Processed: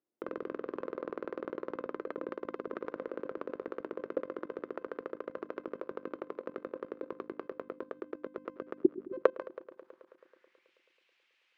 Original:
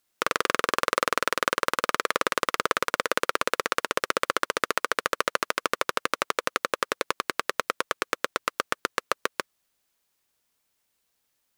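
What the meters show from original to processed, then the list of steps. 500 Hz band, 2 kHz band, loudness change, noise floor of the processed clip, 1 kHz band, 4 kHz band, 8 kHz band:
−5.0 dB, −23.0 dB, −12.0 dB, −74 dBFS, −19.0 dB, below −30 dB, below −40 dB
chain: tuned comb filter 520 Hz, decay 0.17 s, harmonics all, mix 40%
in parallel at −1.5 dB: speech leveller
on the sum: time-frequency box erased 0:08.78–0:09.13, 400–11,000 Hz
high-frequency loss of the air 100 metres
brickwall limiter −8.5 dBFS, peak gain reduction 6 dB
mains-hum notches 50/100/150/200/250/300 Hz
band-pass filter sweep 330 Hz → 2,500 Hz, 0:08.81–0:10.72
high-shelf EQ 3,400 Hz −5.5 dB
output level in coarse steps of 18 dB
on a send: echo machine with several playback heads 108 ms, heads all three, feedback 56%, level −24 dB
on the sum: level +15.5 dB

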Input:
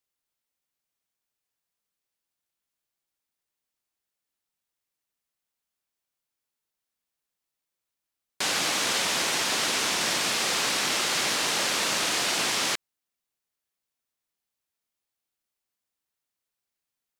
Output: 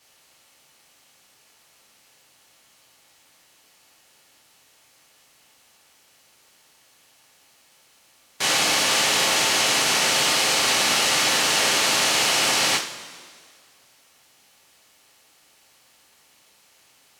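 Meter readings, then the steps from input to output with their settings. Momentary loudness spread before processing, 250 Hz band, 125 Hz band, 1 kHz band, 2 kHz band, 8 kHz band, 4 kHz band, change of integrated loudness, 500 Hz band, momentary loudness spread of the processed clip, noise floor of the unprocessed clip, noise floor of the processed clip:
2 LU, +4.0 dB, +5.0 dB, +6.0 dB, +6.0 dB, +6.0 dB, +6.0 dB, +6.0 dB, +6.0 dB, 3 LU, below −85 dBFS, −58 dBFS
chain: compressor on every frequency bin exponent 0.6
coupled-rooms reverb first 0.36 s, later 2 s, from −18 dB, DRR −7 dB
level −4.5 dB

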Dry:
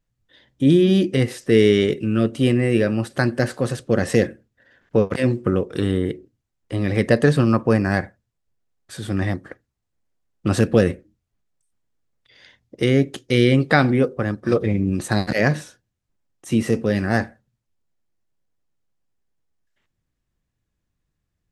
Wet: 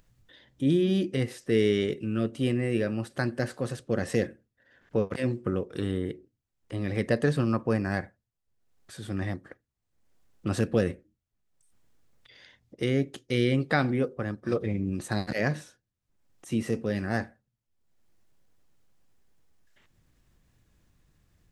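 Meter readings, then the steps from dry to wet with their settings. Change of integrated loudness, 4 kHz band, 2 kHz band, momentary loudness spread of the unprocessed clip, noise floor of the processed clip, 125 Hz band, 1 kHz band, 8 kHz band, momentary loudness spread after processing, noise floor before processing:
−9.0 dB, −9.0 dB, −9.0 dB, 10 LU, −83 dBFS, −9.0 dB, −9.0 dB, −9.0 dB, 10 LU, −78 dBFS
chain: upward compression, threshold −38 dBFS
level −9 dB

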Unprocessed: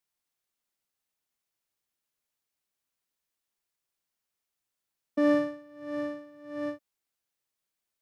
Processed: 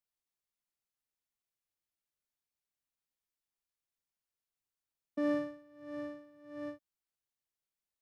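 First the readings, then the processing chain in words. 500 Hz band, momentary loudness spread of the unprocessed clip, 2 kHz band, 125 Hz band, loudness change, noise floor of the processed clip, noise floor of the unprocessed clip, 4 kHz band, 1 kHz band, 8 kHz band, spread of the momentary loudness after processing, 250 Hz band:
−8.5 dB, 18 LU, −9.0 dB, −6.0 dB, −8.5 dB, below −85 dBFS, below −85 dBFS, −9.0 dB, −9.0 dB, can't be measured, 18 LU, −8.0 dB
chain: low-shelf EQ 110 Hz +8 dB
level −9 dB

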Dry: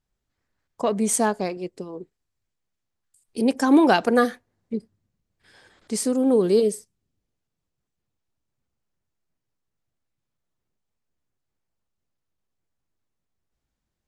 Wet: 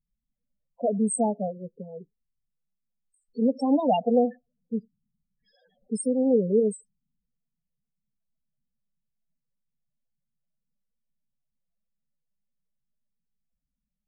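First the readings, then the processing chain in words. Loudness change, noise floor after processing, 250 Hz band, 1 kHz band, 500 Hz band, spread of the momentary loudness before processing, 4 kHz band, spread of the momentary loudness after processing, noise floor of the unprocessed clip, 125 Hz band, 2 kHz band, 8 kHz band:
−4.0 dB, −84 dBFS, −3.5 dB, −5.0 dB, −2.5 dB, 19 LU, below −10 dB, 18 LU, −82 dBFS, −0.5 dB, below −20 dB, −7.0 dB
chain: phaser with its sweep stopped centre 340 Hz, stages 6
spectral peaks only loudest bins 8

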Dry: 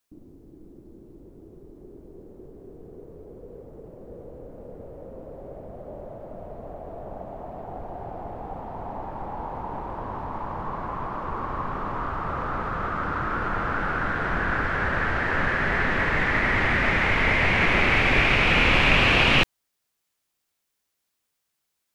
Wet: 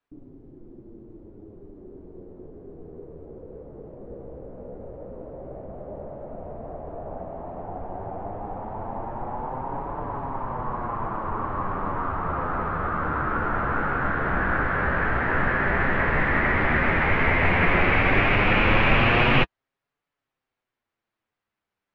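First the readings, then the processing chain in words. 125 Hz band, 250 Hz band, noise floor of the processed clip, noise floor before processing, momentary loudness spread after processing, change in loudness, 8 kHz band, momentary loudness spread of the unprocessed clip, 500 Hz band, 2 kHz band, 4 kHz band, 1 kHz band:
+2.0 dB, +2.0 dB, below −85 dBFS, −79 dBFS, 21 LU, −0.5 dB, can't be measured, 22 LU, +2.0 dB, −1.0 dB, −6.0 dB, +1.5 dB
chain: low-pass filter 2,000 Hz 12 dB per octave
flanger 0.1 Hz, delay 6.8 ms, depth 9.7 ms, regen −22%
level +5.5 dB

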